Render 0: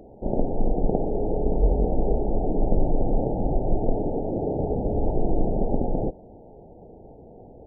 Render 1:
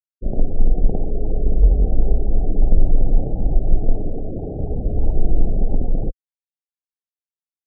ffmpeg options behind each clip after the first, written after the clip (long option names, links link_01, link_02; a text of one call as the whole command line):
ffmpeg -i in.wav -af "afftfilt=real='re*gte(hypot(re,im),0.0794)':imag='im*gte(hypot(re,im),0.0794)':win_size=1024:overlap=0.75,aemphasis=mode=reproduction:type=bsi,volume=-6.5dB" out.wav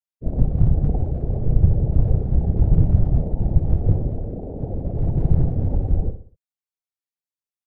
ffmpeg -i in.wav -filter_complex "[0:a]afftfilt=real='hypot(re,im)*cos(2*PI*random(0))':imag='hypot(re,im)*sin(2*PI*random(1))':win_size=512:overlap=0.75,asplit=2[link_01][link_02];[link_02]aecho=0:1:62|124|186|248:0.299|0.125|0.0527|0.0221[link_03];[link_01][link_03]amix=inputs=2:normalize=0,volume=2.5dB" out.wav